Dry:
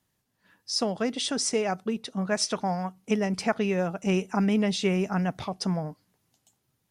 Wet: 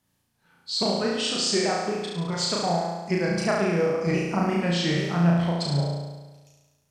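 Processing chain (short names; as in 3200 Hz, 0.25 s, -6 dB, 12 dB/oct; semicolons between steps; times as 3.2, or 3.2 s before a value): repeated pitch sweeps -3.5 st, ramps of 0.828 s; flutter echo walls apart 6 m, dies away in 1.2 s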